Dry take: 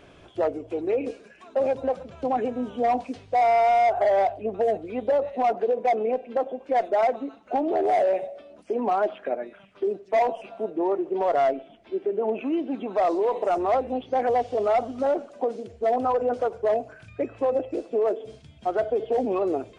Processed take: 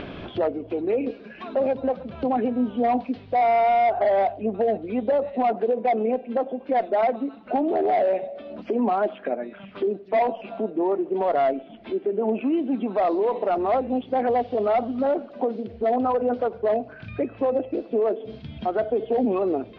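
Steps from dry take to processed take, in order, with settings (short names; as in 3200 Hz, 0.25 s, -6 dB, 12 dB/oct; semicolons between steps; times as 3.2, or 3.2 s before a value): steep low-pass 4400 Hz 36 dB/oct; bell 220 Hz +8.5 dB 0.71 oct; upward compressor, threshold -24 dBFS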